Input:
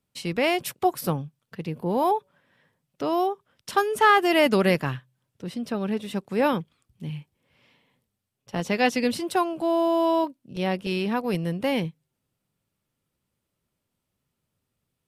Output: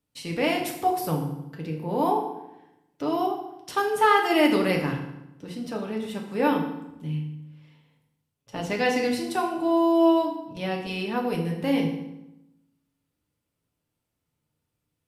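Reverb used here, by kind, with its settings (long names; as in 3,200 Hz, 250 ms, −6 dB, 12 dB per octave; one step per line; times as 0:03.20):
feedback delay network reverb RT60 0.89 s, low-frequency decay 1.3×, high-frequency decay 0.8×, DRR 0 dB
level −4.5 dB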